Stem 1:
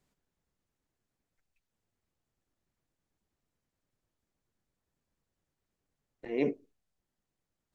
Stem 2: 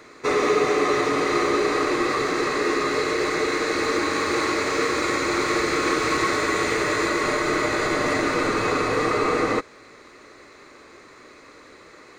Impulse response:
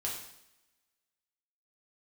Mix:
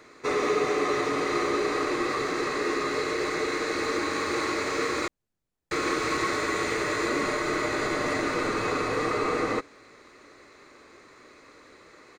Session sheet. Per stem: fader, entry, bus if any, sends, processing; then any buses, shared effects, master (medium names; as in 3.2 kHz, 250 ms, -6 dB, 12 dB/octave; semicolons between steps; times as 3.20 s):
-2.5 dB, 0.75 s, no send, echo send -7 dB, none
-5.0 dB, 0.00 s, muted 5.08–5.71 s, no send, no echo send, none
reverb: none
echo: feedback delay 618 ms, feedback 46%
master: none